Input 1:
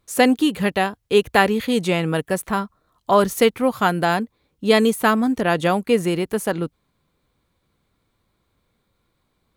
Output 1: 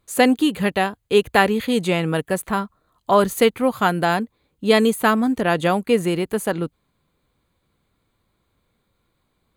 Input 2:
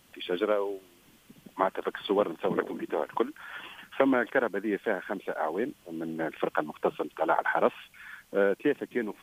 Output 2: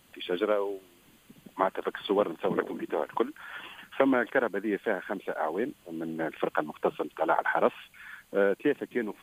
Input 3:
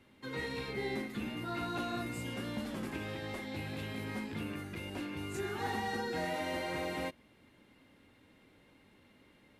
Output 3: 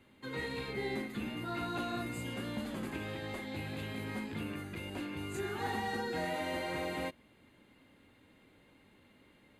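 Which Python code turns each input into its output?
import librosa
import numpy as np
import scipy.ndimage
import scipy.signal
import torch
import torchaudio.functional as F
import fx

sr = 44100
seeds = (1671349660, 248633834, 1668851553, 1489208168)

y = fx.notch(x, sr, hz=5500.0, q=5.5)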